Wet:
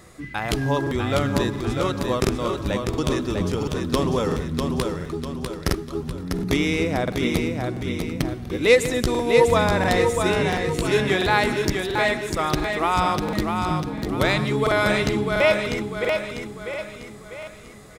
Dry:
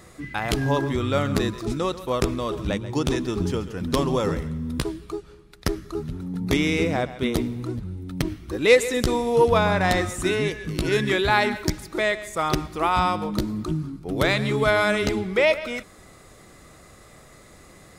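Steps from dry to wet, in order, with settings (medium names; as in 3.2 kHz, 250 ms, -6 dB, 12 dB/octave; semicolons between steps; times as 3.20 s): on a send: feedback delay 647 ms, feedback 45%, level -5 dB; on the sum: crackling interface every 0.69 s, samples 2048, repeat, from 0.82 s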